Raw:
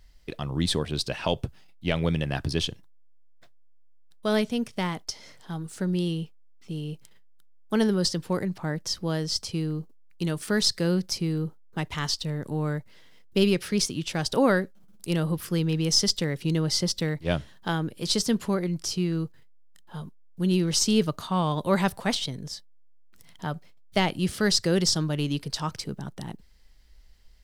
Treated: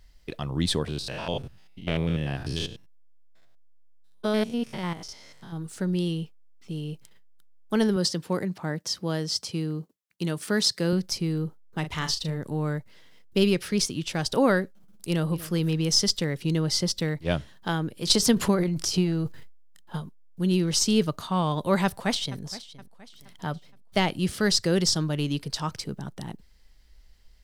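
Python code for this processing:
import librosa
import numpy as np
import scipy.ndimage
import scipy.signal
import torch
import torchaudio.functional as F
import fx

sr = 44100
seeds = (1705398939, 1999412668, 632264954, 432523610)

y = fx.spec_steps(x, sr, hold_ms=100, at=(0.87, 5.56), fade=0.02)
y = fx.highpass(y, sr, hz=120.0, slope=12, at=(7.96, 10.93))
y = fx.doubler(y, sr, ms=38.0, db=-8.0, at=(11.83, 12.36), fade=0.02)
y = fx.echo_throw(y, sr, start_s=15.07, length_s=0.44, ms=240, feedback_pct=40, wet_db=-17.0)
y = fx.transient(y, sr, attack_db=7, sustain_db=11, at=(18.06, 20.0), fade=0.02)
y = fx.echo_throw(y, sr, start_s=21.84, length_s=0.56, ms=470, feedback_pct=45, wet_db=-17.0)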